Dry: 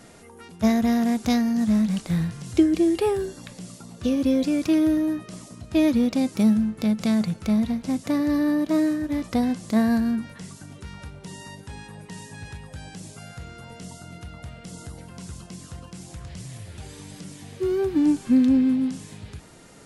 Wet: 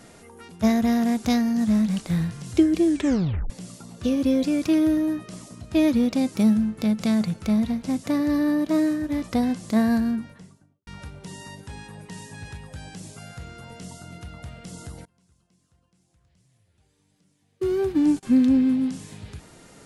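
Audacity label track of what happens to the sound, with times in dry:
2.870000	2.870000	tape stop 0.63 s
9.950000	10.870000	studio fade out
15.050000	18.230000	gate -32 dBFS, range -26 dB

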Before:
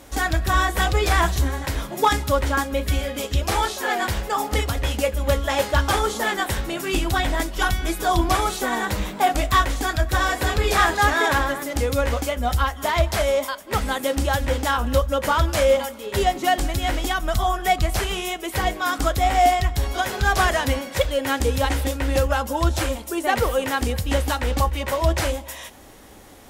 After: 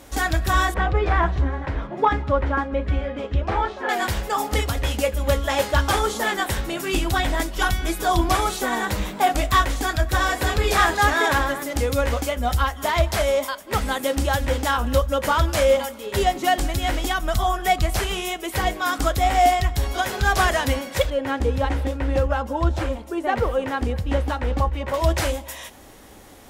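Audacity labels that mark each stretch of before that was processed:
0.740000	3.890000	low-pass 1.8 kHz
21.100000	24.940000	low-pass 1.4 kHz 6 dB/octave

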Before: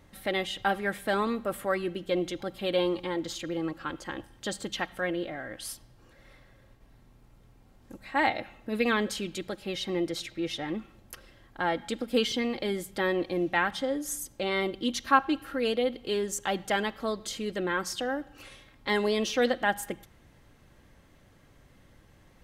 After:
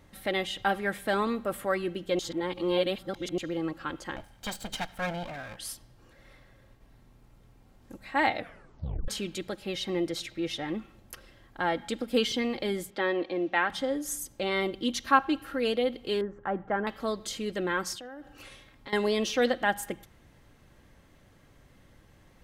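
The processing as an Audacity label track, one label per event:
2.190000	3.380000	reverse
4.160000	5.570000	comb filter that takes the minimum delay 1.3 ms
8.370000	8.370000	tape stop 0.71 s
12.900000	13.700000	three-band isolator lows -16 dB, under 220 Hz, highs -22 dB, over 5.2 kHz
16.210000	16.870000	Chebyshev low-pass 1.5 kHz, order 3
17.940000	18.930000	compression 12:1, threshold -39 dBFS

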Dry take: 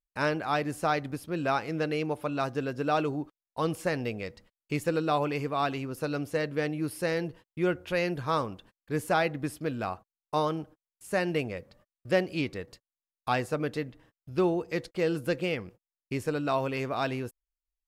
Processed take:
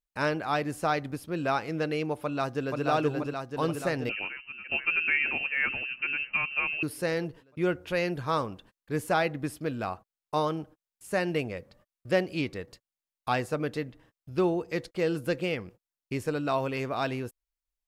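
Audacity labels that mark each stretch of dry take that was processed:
2.230000	2.850000	echo throw 480 ms, feedback 70%, level -2.5 dB
4.090000	6.830000	frequency inversion carrier 2.9 kHz

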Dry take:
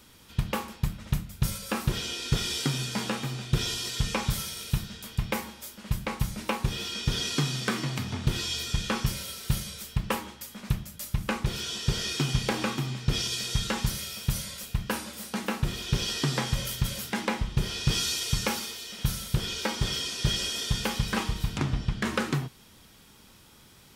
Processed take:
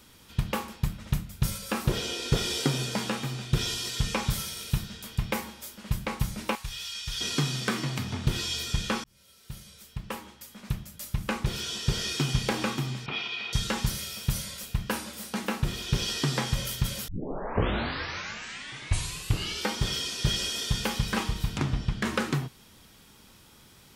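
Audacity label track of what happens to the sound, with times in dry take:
1.850000	2.960000	peaking EQ 510 Hz +7.5 dB 1.5 oct
6.550000	7.210000	amplifier tone stack bass-middle-treble 10-0-10
9.040000	11.500000	fade in
13.060000	13.530000	cabinet simulation 320–3300 Hz, peaks and dips at 340 Hz -4 dB, 520 Hz -8 dB, 810 Hz +7 dB, 1.2 kHz +5 dB, 1.7 kHz -4 dB, 2.4 kHz +8 dB
17.080000	17.080000	tape start 2.68 s

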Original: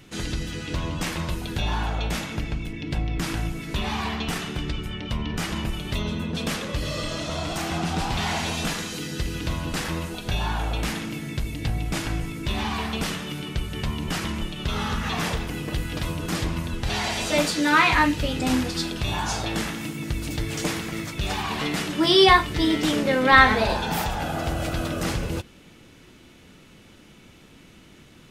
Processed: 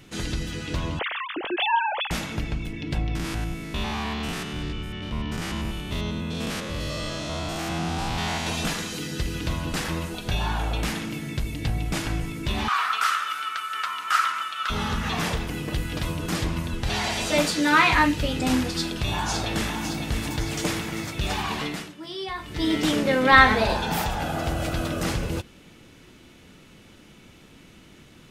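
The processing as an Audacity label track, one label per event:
0.990000	2.110000	formants replaced by sine waves
3.150000	8.470000	spectrogram pixelated in time every 100 ms
12.680000	14.700000	resonant high-pass 1.3 kHz, resonance Q 11
18.770000	19.730000	echo throw 560 ms, feedback 60%, level -7 dB
21.510000	22.790000	dip -18 dB, fades 0.44 s

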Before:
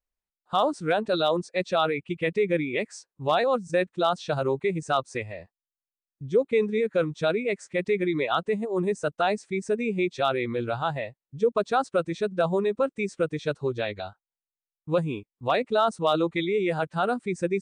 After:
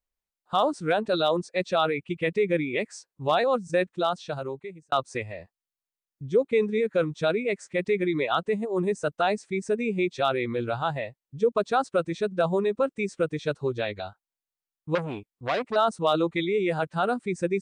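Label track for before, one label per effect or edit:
3.850000	4.920000	fade out
14.950000	15.760000	transformer saturation saturates under 1.5 kHz

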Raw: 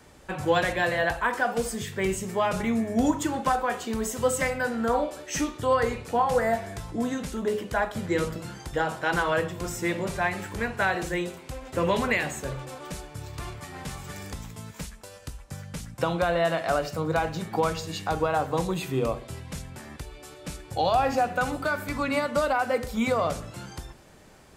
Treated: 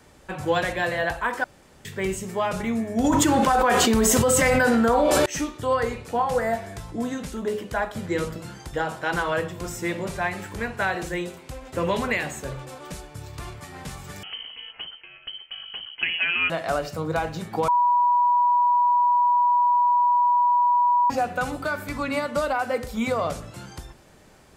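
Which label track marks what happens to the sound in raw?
1.440000	1.850000	room tone
3.040000	5.260000	level flattener amount 100%
14.230000	16.500000	frequency inversion carrier 3.1 kHz
17.680000	21.100000	bleep 973 Hz -16 dBFS

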